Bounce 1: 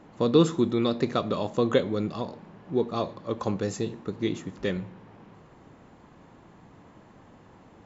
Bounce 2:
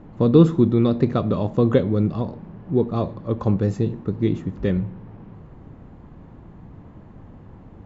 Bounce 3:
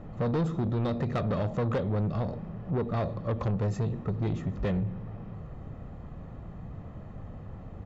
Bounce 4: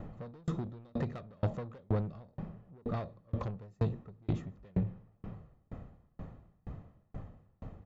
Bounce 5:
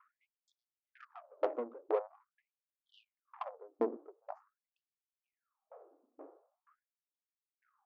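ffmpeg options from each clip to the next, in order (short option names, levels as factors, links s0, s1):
-af "aemphasis=mode=reproduction:type=riaa,volume=1.12"
-af "aecho=1:1:1.6:0.44,acompressor=threshold=0.0891:ratio=2.5,asoftclip=type=tanh:threshold=0.0631"
-af "aeval=exprs='val(0)*pow(10,-37*if(lt(mod(2.1*n/s,1),2*abs(2.1)/1000),1-mod(2.1*n/s,1)/(2*abs(2.1)/1000),(mod(2.1*n/s,1)-2*abs(2.1)/1000)/(1-2*abs(2.1)/1000))/20)':c=same,volume=1.26"
-af "asuperstop=centerf=2800:order=20:qfactor=0.95,adynamicsmooth=sensitivity=2.5:basefreq=630,afftfilt=real='re*gte(b*sr/1024,250*pow(3300/250,0.5+0.5*sin(2*PI*0.45*pts/sr)))':imag='im*gte(b*sr/1024,250*pow(3300/250,0.5+0.5*sin(2*PI*0.45*pts/sr)))':win_size=1024:overlap=0.75,volume=2"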